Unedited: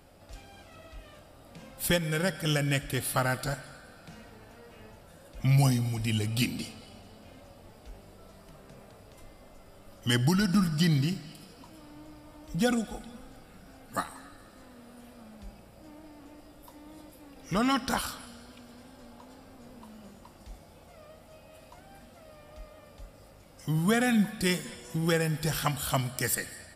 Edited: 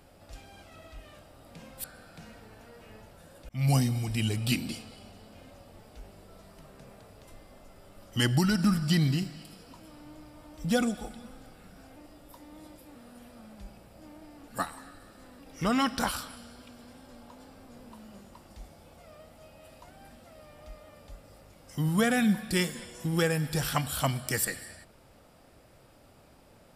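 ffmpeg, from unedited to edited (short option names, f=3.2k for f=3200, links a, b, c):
-filter_complex "[0:a]asplit=7[a][b][c][d][e][f][g];[a]atrim=end=1.842[h];[b]atrim=start=3.738:end=5.39,asetpts=PTS-STARTPTS,afade=t=out:st=1.648:d=0.004:c=hsin[i];[c]atrim=start=5.39:end=13.862,asetpts=PTS-STARTPTS,afade=t=in:d=0.25[j];[d]atrim=start=16.298:end=17.292[k];[e]atrim=start=14.768:end=16.302[l];[f]atrim=start=13.858:end=14.772[m];[g]atrim=start=17.288[n];[i][j]concat=n=2:v=0:a=1[o];[h][o]acrossfade=d=0.004:c1=hsin:c2=hsin[p];[p][k]acrossfade=d=0.004:c1=hsin:c2=hsin[q];[q][l]acrossfade=d=0.004:c1=hsin:c2=hsin[r];[r][m]acrossfade=d=0.004:c1=hsin:c2=hsin[s];[s][n]acrossfade=d=0.004:c1=hsin:c2=hsin"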